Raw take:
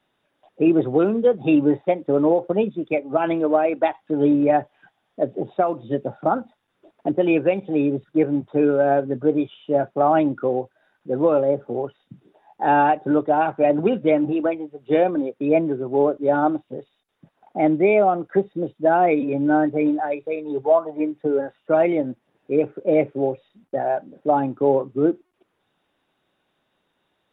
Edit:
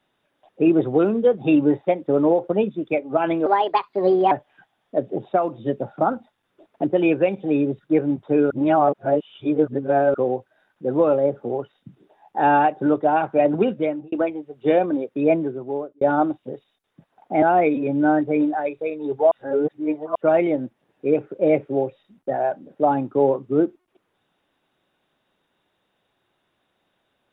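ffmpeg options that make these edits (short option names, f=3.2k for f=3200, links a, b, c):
-filter_complex "[0:a]asplit=10[a][b][c][d][e][f][g][h][i][j];[a]atrim=end=3.464[k];[b]atrim=start=3.46:end=4.56,asetpts=PTS-STARTPTS,asetrate=56889,aresample=44100[l];[c]atrim=start=4.556:end=8.752[m];[d]atrim=start=8.748:end=10.392,asetpts=PTS-STARTPTS,areverse[n];[e]atrim=start=10.388:end=14.37,asetpts=PTS-STARTPTS,afade=t=out:st=3.512:d=0.47[o];[f]atrim=start=14.37:end=16.26,asetpts=PTS-STARTPTS,afade=t=in:d=0.004:c=hsin,afade=t=out:st=1.21:d=0.68[p];[g]atrim=start=16.26:end=17.672,asetpts=PTS-STARTPTS,afade=t=in:d=0.004:c=hsin[q];[h]atrim=start=18.878:end=20.772[r];[i]atrim=start=20.768:end=21.612,asetpts=PTS-STARTPTS,areverse[s];[j]atrim=start=21.608[t];[k][l]acrossfade=d=0.004:c1=hsin:c2=hsin[u];[u][m]acrossfade=d=0.004:c1=hsin:c2=hsin[v];[v][n]acrossfade=d=0.004:c1=hsin:c2=hsin[w];[o][p][q]concat=n=3:v=0:a=1[x];[w][x]acrossfade=d=0.004:c1=hsin:c2=hsin[y];[y][r]acrossfade=d=0.004:c1=hsin:c2=hsin[z];[z][s]acrossfade=d=0.004:c1=hsin:c2=hsin[aa];[aa][t]acrossfade=d=0.004:c1=hsin:c2=hsin"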